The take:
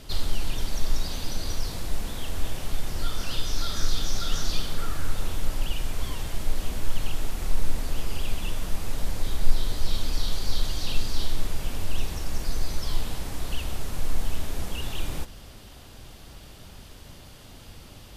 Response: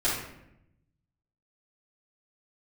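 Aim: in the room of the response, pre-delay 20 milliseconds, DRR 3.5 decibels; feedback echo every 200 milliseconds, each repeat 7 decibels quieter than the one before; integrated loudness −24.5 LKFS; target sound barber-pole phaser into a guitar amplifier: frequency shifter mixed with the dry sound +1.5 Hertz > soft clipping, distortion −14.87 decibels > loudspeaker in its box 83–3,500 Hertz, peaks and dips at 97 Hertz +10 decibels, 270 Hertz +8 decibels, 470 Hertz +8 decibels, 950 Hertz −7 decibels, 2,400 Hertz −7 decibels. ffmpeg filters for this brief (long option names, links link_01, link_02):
-filter_complex "[0:a]aecho=1:1:200|400|600|800|1000:0.447|0.201|0.0905|0.0407|0.0183,asplit=2[link_01][link_02];[1:a]atrim=start_sample=2205,adelay=20[link_03];[link_02][link_03]afir=irnorm=-1:irlink=0,volume=-14.5dB[link_04];[link_01][link_04]amix=inputs=2:normalize=0,asplit=2[link_05][link_06];[link_06]afreqshift=1.5[link_07];[link_05][link_07]amix=inputs=2:normalize=1,asoftclip=threshold=-9dB,highpass=83,equalizer=frequency=97:width_type=q:width=4:gain=10,equalizer=frequency=270:width_type=q:width=4:gain=8,equalizer=frequency=470:width_type=q:width=4:gain=8,equalizer=frequency=950:width_type=q:width=4:gain=-7,equalizer=frequency=2400:width_type=q:width=4:gain=-7,lowpass=frequency=3500:width=0.5412,lowpass=frequency=3500:width=1.3066,volume=12.5dB"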